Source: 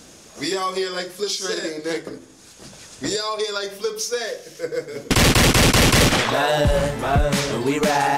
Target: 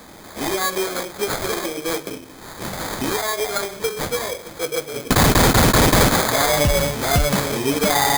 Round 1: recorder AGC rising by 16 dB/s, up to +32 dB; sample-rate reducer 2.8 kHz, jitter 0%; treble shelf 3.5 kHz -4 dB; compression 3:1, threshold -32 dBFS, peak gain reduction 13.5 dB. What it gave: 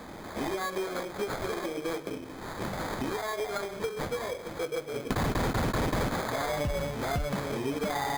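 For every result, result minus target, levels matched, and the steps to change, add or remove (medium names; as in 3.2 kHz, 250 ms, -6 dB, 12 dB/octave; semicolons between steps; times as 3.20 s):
compression: peak gain reduction +13.5 dB; 8 kHz band -7.0 dB
remove: compression 3:1, threshold -32 dBFS, peak gain reduction 13.5 dB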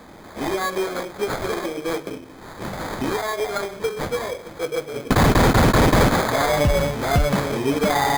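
8 kHz band -7.5 dB
change: treble shelf 3.5 kHz +7.5 dB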